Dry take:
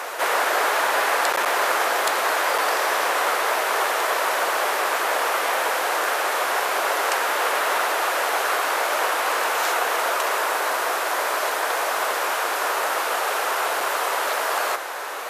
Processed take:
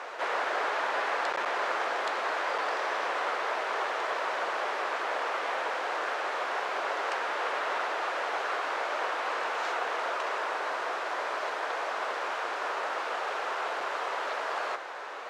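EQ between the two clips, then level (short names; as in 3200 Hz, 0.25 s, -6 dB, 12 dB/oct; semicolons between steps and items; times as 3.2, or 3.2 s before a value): air absorption 140 m; -8.0 dB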